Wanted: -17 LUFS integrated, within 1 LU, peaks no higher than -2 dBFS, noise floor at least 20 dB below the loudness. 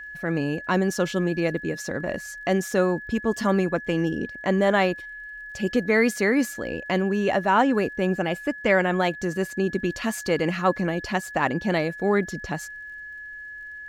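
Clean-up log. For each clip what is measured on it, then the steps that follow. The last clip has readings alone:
tick rate 40 per s; steady tone 1.7 kHz; tone level -36 dBFS; loudness -24.5 LUFS; peak level -8.0 dBFS; loudness target -17.0 LUFS
-> de-click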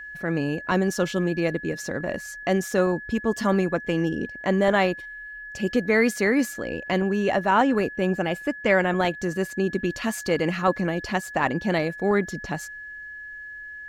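tick rate 0.14 per s; steady tone 1.7 kHz; tone level -36 dBFS
-> band-stop 1.7 kHz, Q 30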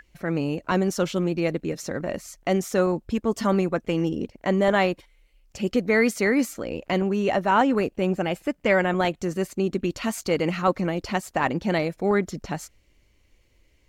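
steady tone not found; loudness -24.5 LUFS; peak level -7.5 dBFS; loudness target -17.0 LUFS
-> trim +7.5 dB; peak limiter -2 dBFS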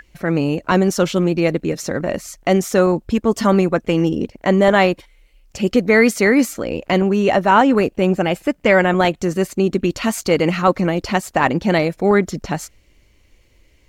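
loudness -17.5 LUFS; peak level -2.0 dBFS; noise floor -55 dBFS

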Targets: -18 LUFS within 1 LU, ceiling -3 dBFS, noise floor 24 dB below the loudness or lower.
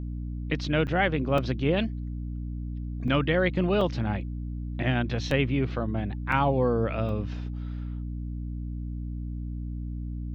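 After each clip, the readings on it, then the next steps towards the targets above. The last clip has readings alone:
dropouts 7; longest dropout 2.6 ms; hum 60 Hz; highest harmonic 300 Hz; hum level -31 dBFS; loudness -28.5 LUFS; peak level -9.5 dBFS; loudness target -18.0 LUFS
-> interpolate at 0.87/1.38/3.08/3.81/5.31/6.32/7.09 s, 2.6 ms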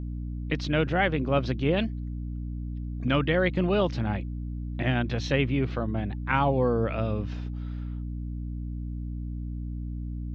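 dropouts 0; hum 60 Hz; highest harmonic 300 Hz; hum level -31 dBFS
-> de-hum 60 Hz, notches 5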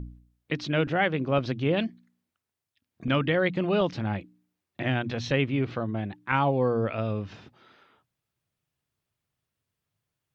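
hum not found; loudness -27.5 LUFS; peak level -10.0 dBFS; loudness target -18.0 LUFS
-> trim +9.5 dB; peak limiter -3 dBFS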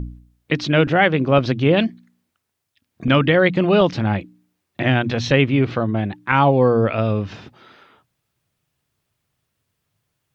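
loudness -18.0 LUFS; peak level -3.0 dBFS; noise floor -76 dBFS

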